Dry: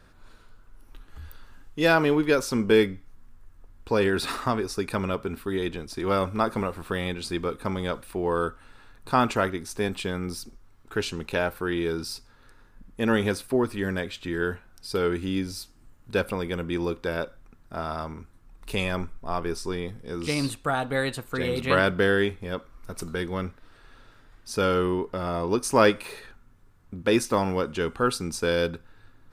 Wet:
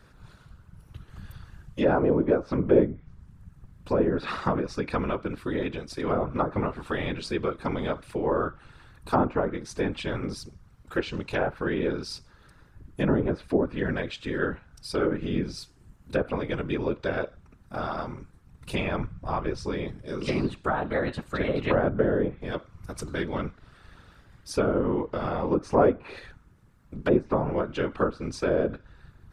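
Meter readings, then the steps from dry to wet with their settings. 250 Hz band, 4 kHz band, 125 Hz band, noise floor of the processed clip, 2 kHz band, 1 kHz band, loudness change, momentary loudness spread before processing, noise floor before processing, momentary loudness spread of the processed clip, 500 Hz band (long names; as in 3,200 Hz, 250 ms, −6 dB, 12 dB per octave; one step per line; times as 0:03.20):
0.0 dB, −7.0 dB, +0.5 dB, −57 dBFS, −5.5 dB, −2.0 dB, −1.0 dB, 13 LU, −55 dBFS, 14 LU, −0.5 dB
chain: treble cut that deepens with the level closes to 800 Hz, closed at −19 dBFS
random phases in short frames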